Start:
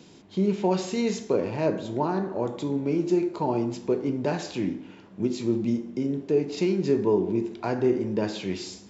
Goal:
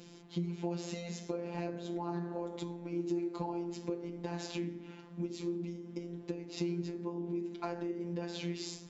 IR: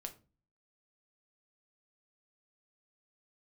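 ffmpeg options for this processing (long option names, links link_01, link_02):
-af "acompressor=threshold=-31dB:ratio=6,afftfilt=real='hypot(re,im)*cos(PI*b)':imag='0':win_size=1024:overlap=0.75"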